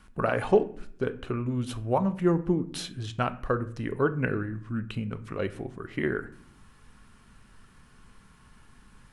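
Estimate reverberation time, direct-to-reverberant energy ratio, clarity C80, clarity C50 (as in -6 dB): 0.60 s, 10.5 dB, 19.5 dB, 16.0 dB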